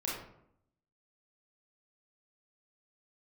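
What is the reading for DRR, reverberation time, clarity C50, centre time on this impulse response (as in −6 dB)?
−5.5 dB, 0.70 s, 1.5 dB, 54 ms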